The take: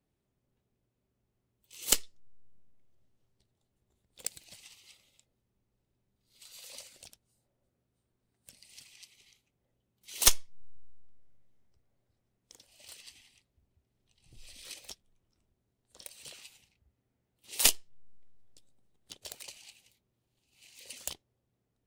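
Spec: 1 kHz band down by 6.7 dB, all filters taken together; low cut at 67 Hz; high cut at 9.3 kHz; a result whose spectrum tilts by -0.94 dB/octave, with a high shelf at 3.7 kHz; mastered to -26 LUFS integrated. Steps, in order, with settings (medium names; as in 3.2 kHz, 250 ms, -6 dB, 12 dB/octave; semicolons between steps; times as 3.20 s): high-pass 67 Hz; low-pass 9.3 kHz; peaking EQ 1 kHz -8.5 dB; treble shelf 3.7 kHz -3.5 dB; trim +9 dB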